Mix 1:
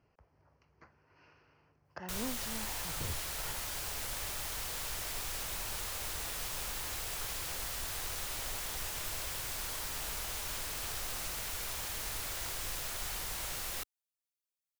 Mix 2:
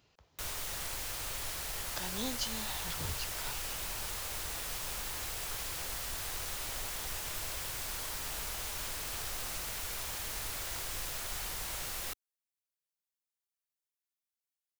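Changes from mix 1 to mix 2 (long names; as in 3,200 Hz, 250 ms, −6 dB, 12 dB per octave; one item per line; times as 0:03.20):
speech: remove moving average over 12 samples
background: entry −1.70 s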